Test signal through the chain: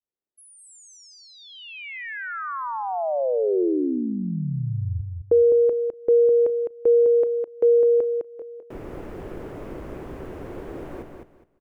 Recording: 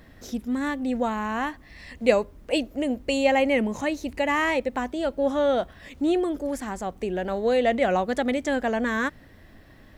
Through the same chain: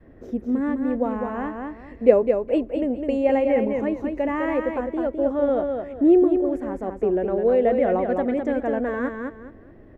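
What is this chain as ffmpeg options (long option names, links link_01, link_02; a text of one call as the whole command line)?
ffmpeg -i in.wav -filter_complex "[0:a]firequalizer=gain_entry='entry(190,0);entry(360,10);entry(800,-2);entry(2300,-10);entry(4000,-23)':delay=0.05:min_phase=1,asplit=2[link_01][link_02];[link_02]aecho=0:1:207|414|621:0.562|0.129|0.0297[link_03];[link_01][link_03]amix=inputs=2:normalize=0,adynamicequalizer=threshold=0.0355:dfrequency=390:dqfactor=0.81:tfrequency=390:tqfactor=0.81:attack=5:release=100:ratio=0.375:range=2.5:mode=cutabove:tftype=bell" out.wav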